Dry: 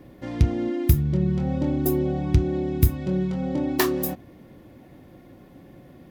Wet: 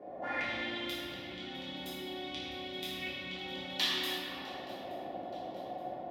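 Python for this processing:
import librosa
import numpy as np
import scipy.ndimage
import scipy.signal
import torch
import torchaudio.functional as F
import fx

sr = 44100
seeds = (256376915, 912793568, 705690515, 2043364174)

p1 = fx.octave_divider(x, sr, octaves=2, level_db=-5.0)
p2 = scipy.signal.sosfilt(scipy.signal.butter(2, 81.0, 'highpass', fs=sr, output='sos'), p1)
p3 = fx.over_compress(p2, sr, threshold_db=-28.0, ratio=-1.0)
p4 = p2 + (p3 * librosa.db_to_amplitude(1.5))
p5 = fx.quant_float(p4, sr, bits=6)
p6 = fx.auto_wah(p5, sr, base_hz=570.0, top_hz=3400.0, q=5.2, full_db=-16.5, direction='up')
p7 = p6 + fx.echo_swing(p6, sr, ms=874, ratio=3, feedback_pct=46, wet_db=-20.5, dry=0)
y = fx.room_shoebox(p7, sr, seeds[0], volume_m3=170.0, walls='hard', distance_m=1.3)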